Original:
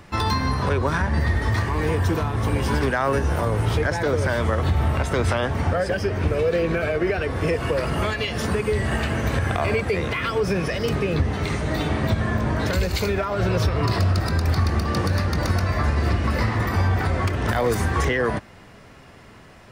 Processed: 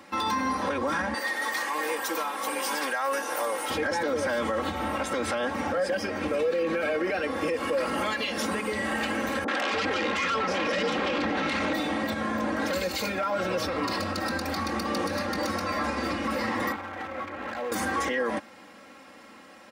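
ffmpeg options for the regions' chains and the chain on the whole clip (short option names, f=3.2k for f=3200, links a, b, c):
-filter_complex "[0:a]asettb=1/sr,asplit=3[a][b][c];[a]atrim=end=1.144[d];[b]atrim=start=1.14:end=3.7,asetpts=PTS-STARTPTS,afade=t=in:d=0.004:c=qsin,afade=t=out:st=2.556:d=0.004:c=qsin,highpass=510,highshelf=f=7.4k:g=12[e];[c]atrim=start=3.696[f];[d][e]acrossfade=d=0.004:c1=hsin:c2=qsin[g];[g][f]acrossfade=d=0.004:c1=qsin:c2=hsin,asettb=1/sr,asplit=3[h][i][j];[h]atrim=end=9.444[k];[i]atrim=start=9.44:end=11.73,asetpts=PTS-STARTPTS,afade=t=in:d=0.004:c=qsin,afade=t=out:st=2.286:d=0.004:c=qsin,lowpass=3.9k,aeval=exprs='0.282*sin(PI/2*3.16*val(0)/0.282)':c=same,acrossover=split=200|700[l][m][n];[n]adelay=40[o];[l]adelay=300[p];[p][m][o]amix=inputs=3:normalize=0,atrim=end_sample=100989[q];[j]atrim=start=11.726[r];[k][q]acrossfade=d=0.004:c1=hsin:c2=qsin[s];[s][r]acrossfade=d=0.004:c1=qsin:c2=hsin,asettb=1/sr,asplit=3[t][u][v];[t]atrim=end=16.724[w];[u]atrim=start=16.72:end=17.72,asetpts=PTS-STARTPTS,afade=t=in:d=0.004:c=qsin,afade=t=out:st=0.996:d=0.004:c=qsin,lowpass=f=2.5k:w=0.5412,lowpass=f=2.5k:w=1.3066,asoftclip=type=hard:threshold=-21dB,acrossover=split=88|500[x][y][z];[x]acompressor=threshold=-35dB:ratio=4[aa];[y]acompressor=threshold=-37dB:ratio=4[ab];[z]acompressor=threshold=-33dB:ratio=4[ac];[aa][ab][ac]amix=inputs=3:normalize=0[ad];[v]atrim=start=17.716[ae];[w][ad]acrossfade=d=0.004:c1=hsin:c2=qsin[af];[af][ae]acrossfade=d=0.004:c1=qsin:c2=hsin,highpass=240,aecho=1:1:3.7:0.86,alimiter=limit=-16.5dB:level=0:latency=1:release=19,volume=-3dB"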